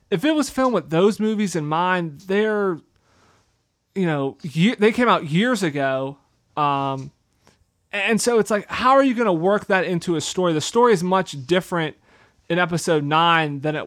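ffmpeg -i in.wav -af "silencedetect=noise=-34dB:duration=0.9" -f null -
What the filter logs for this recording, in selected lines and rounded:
silence_start: 2.78
silence_end: 3.96 | silence_duration: 1.18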